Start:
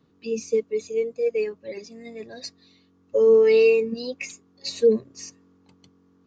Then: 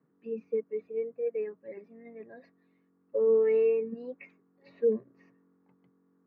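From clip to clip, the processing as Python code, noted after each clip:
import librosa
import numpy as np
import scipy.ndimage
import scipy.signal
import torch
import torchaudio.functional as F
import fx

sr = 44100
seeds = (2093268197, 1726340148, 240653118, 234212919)

y = scipy.signal.sosfilt(scipy.signal.ellip(3, 1.0, 60, [140.0, 1900.0], 'bandpass', fs=sr, output='sos'), x)
y = y * librosa.db_to_amplitude(-8.0)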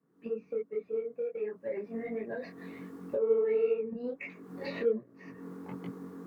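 y = fx.recorder_agc(x, sr, target_db=-24.0, rise_db_per_s=57.0, max_gain_db=30)
y = fx.cheby_harmonics(y, sr, harmonics=(3, 7), levels_db=(-31, -41), full_scale_db=-16.0)
y = fx.detune_double(y, sr, cents=47)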